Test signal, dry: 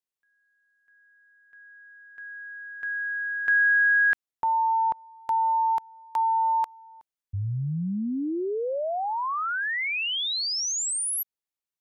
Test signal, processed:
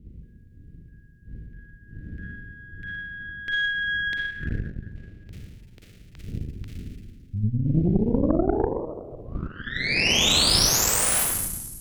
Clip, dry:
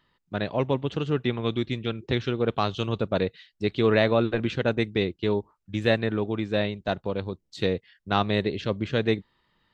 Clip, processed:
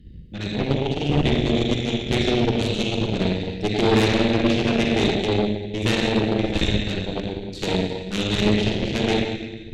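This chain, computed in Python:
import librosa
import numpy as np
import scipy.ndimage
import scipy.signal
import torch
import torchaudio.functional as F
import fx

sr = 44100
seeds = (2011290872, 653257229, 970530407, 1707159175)

y = fx.dmg_wind(x, sr, seeds[0], corner_hz=100.0, level_db=-40.0)
y = scipy.signal.sosfilt(scipy.signal.cheby1(2, 1.0, [350.0, 2400.0], 'bandstop', fs=sr, output='sos'), y)
y = fx.rev_schroeder(y, sr, rt60_s=1.7, comb_ms=38, drr_db=-2.0)
y = fx.cheby_harmonics(y, sr, harmonics=(4, 8), levels_db=(-16, -18), full_scale_db=-8.0)
y = F.gain(torch.from_numpy(y), 2.0).numpy()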